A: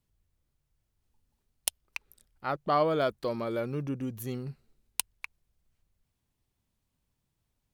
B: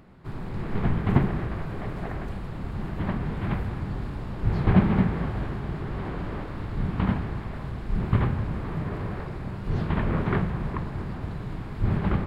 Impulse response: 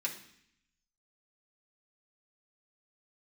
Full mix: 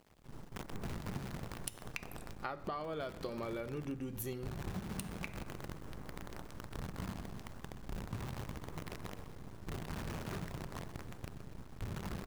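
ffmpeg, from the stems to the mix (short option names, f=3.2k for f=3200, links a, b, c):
-filter_complex "[0:a]alimiter=limit=-20.5dB:level=0:latency=1:release=394,volume=1dB,asplit=2[a][b];[b]volume=-5.5dB[c];[1:a]lowpass=1.8k,acrusher=bits=5:dc=4:mix=0:aa=0.000001,volume=-13.5dB,asplit=2[d][e];[e]volume=-12.5dB[f];[2:a]atrim=start_sample=2205[g];[c][g]afir=irnorm=-1:irlink=0[h];[f]aecho=0:1:126|252|378|504|630|756|882|1008:1|0.55|0.303|0.166|0.0915|0.0503|0.0277|0.0152[i];[a][d][h][i]amix=inputs=4:normalize=0,acompressor=threshold=-37dB:ratio=12"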